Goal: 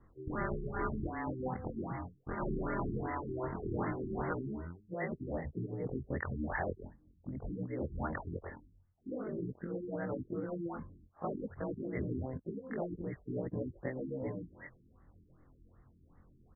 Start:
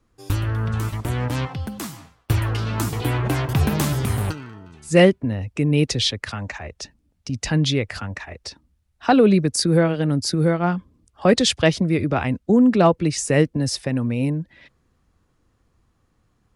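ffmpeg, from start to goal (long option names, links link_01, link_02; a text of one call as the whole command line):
ffmpeg -i in.wav -af "afftfilt=real='re':imag='-im':win_size=2048:overlap=0.75,areverse,acompressor=threshold=-33dB:ratio=16,areverse,aresample=8000,aresample=44100,afftfilt=real='re*lt(hypot(re,im),0.0891)':imag='im*lt(hypot(re,im),0.0891)':win_size=1024:overlap=0.75,afftfilt=real='re*lt(b*sr/1024,400*pow(2200/400,0.5+0.5*sin(2*PI*2.6*pts/sr)))':imag='im*lt(b*sr/1024,400*pow(2200/400,0.5+0.5*sin(2*PI*2.6*pts/sr)))':win_size=1024:overlap=0.75,volume=6.5dB" out.wav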